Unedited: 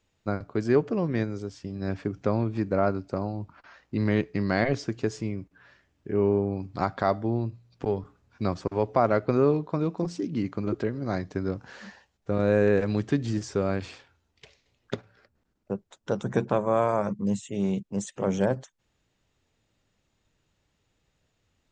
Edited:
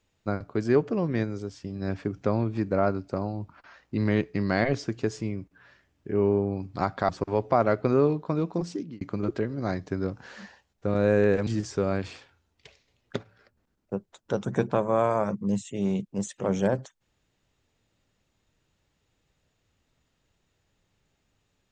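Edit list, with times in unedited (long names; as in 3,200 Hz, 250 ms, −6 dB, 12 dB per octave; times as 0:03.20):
0:07.09–0:08.53: remove
0:10.15–0:10.45: fade out
0:12.91–0:13.25: remove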